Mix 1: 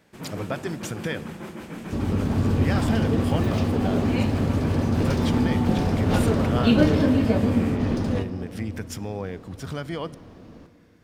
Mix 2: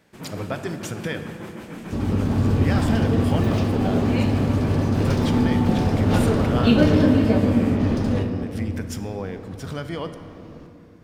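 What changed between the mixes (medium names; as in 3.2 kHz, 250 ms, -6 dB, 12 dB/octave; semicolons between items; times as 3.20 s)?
speech: send +10.0 dB; second sound: send +7.5 dB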